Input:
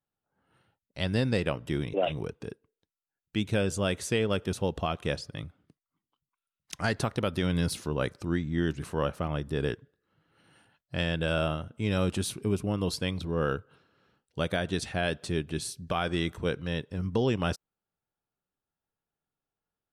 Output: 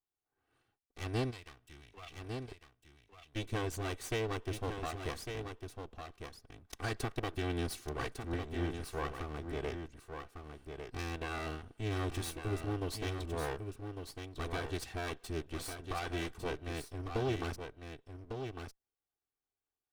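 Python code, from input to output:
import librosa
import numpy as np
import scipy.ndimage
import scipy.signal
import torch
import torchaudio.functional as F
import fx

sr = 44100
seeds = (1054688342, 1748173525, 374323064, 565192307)

p1 = fx.lower_of_two(x, sr, delay_ms=2.6)
p2 = fx.tone_stack(p1, sr, knobs='5-5-5', at=(1.3, 2.48), fade=0.02)
p3 = p2 + fx.echo_single(p2, sr, ms=1152, db=-7.0, dry=0)
y = p3 * 10.0 ** (-6.5 / 20.0)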